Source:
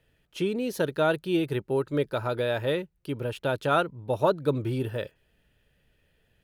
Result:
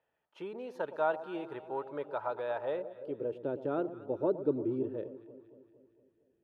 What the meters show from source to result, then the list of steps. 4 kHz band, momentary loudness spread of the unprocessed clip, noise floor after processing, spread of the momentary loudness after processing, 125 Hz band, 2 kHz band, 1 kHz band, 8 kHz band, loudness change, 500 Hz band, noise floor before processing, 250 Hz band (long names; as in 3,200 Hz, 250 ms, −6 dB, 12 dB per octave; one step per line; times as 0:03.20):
below −20 dB, 8 LU, −78 dBFS, 12 LU, −16.5 dB, −12.0 dB, −7.5 dB, can't be measured, −8.0 dB, −7.0 dB, −70 dBFS, −7.5 dB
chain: delay that swaps between a low-pass and a high-pass 115 ms, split 990 Hz, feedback 74%, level −12.5 dB
band-pass filter sweep 880 Hz → 340 Hz, 0:02.59–0:03.46